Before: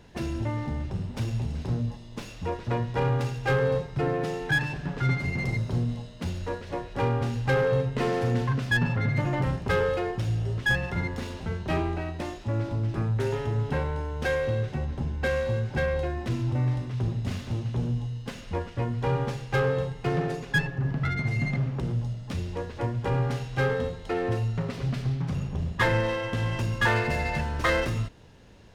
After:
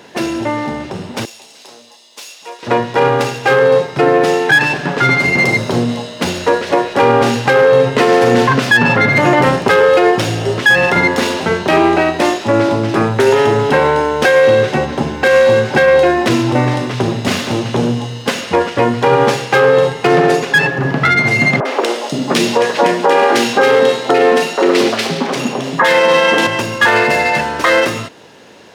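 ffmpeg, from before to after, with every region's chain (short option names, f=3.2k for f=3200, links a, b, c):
-filter_complex "[0:a]asettb=1/sr,asplit=3[a][b][c];[a]atrim=end=1.254[d];[b]atrim=start=1.25:end=2.63,asetpts=PTS-STARTPTS,afade=t=in:d=0.004:c=qsin,afade=t=out:st=1.376:d=0.004:c=qsin,highpass=1.1k,equalizer=f=1.5k:t=o:w=2.1:g=-13.5[e];[c]atrim=start=2.626[f];[d][e]acrossfade=d=0.004:c1=hsin:c2=qsin[g];[g][f]acrossfade=d=0.004:c1=qsin:c2=hsin,asettb=1/sr,asplit=3[h][i][j];[h]atrim=end=21.604[k];[i]atrim=start=21.6:end=26.47,asetpts=PTS-STARTPTS,afade=t=in:d=0.004:c=qsin,afade=t=out:st=4.866:d=0.004:c=qsin,highpass=f=200:w=0.5412,highpass=f=200:w=1.3066,acontrast=80,acrossover=split=370|1500[l][m][n];[n]adelay=50[o];[l]adelay=520[p];[p][m][o]amix=inputs=3:normalize=0,atrim=end_sample=214767[q];[j]atrim=start=26.466[r];[k][q]acrossfade=d=0.004:c1=hsin:c2=qsin[s];[s][r]acrossfade=d=0.004:c1=qsin:c2=hsin,dynaudnorm=f=470:g=21:m=6dB,highpass=310,alimiter=level_in=18.5dB:limit=-1dB:release=50:level=0:latency=1,volume=-1dB"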